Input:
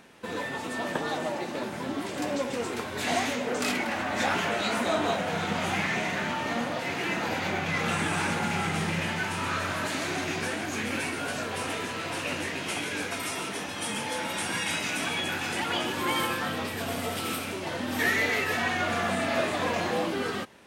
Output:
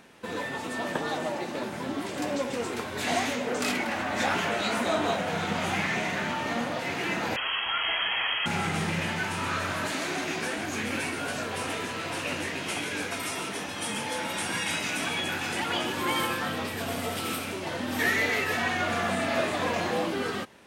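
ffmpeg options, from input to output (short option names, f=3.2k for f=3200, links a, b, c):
-filter_complex "[0:a]asettb=1/sr,asplit=3[a][b][c];[a]atrim=end=7.364[d];[b]atrim=start=7.36:end=8.46,asetpts=PTS-STARTPTS,afade=t=in:d=0.004:c=qsin,afade=t=out:st=1.096:d=0.004:c=qsin,lowpass=f=2.9k:t=q:w=0.5098,lowpass=f=2.9k:t=q:w=0.6013,lowpass=f=2.9k:t=q:w=0.9,lowpass=f=2.9k:t=q:w=2.563,afreqshift=-3400[e];[c]atrim=start=8.456[f];[d][e]acrossfade=d=0.004:c1=hsin:c2=qsin[g];[g][f]acrossfade=d=0.004:c1=qsin:c2=hsin,asettb=1/sr,asplit=3[h][i][j];[h]atrim=end=9.924[k];[i]atrim=start=9.92:end=10.58,asetpts=PTS-STARTPTS,afade=t=in:d=0.004:c=qsin,afade=t=out:st=0.656:d=0.004:c=qsin,highpass=160[l];[j]atrim=start=10.576[m];[k][l]acrossfade=d=0.004:c1=hsin:c2=qsin[n];[n][m]acrossfade=d=0.004:c1=qsin:c2=hsin"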